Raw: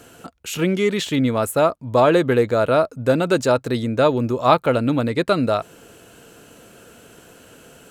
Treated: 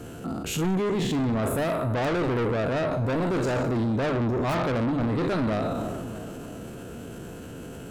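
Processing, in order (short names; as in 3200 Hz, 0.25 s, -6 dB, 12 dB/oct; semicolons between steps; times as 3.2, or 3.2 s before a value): spectral trails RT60 0.78 s; notches 50/100/150/200/250/300 Hz; in parallel at -5 dB: wrapped overs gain 2.5 dB; on the sum: tilt shelf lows +8 dB, about 650 Hz; soft clip -14.5 dBFS, distortion -7 dB; on a send: dark delay 0.318 s, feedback 55%, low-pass 1300 Hz, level -17 dB; on the sum: transient shaper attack -5 dB, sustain +5 dB; bell 510 Hz -3.5 dB 1 oct; limiter -21 dBFS, peak gain reduction 9 dB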